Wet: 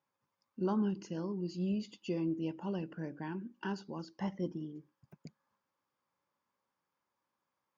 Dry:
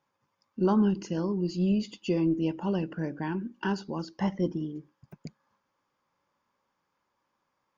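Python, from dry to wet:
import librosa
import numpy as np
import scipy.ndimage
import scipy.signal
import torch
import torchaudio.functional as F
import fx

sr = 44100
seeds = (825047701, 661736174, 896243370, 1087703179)

y = scipy.signal.sosfilt(scipy.signal.butter(2, 66.0, 'highpass', fs=sr, output='sos'), x)
y = F.gain(torch.from_numpy(y), -8.5).numpy()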